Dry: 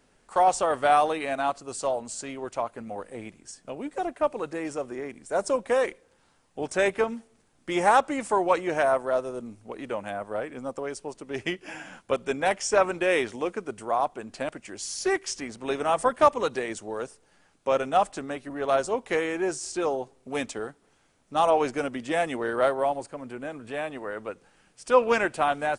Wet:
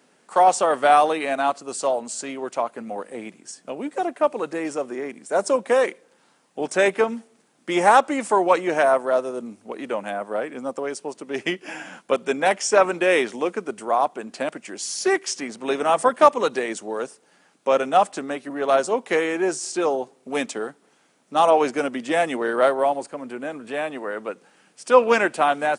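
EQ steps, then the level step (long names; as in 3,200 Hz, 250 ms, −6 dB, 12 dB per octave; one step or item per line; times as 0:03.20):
high-pass filter 170 Hz 24 dB per octave
+5.0 dB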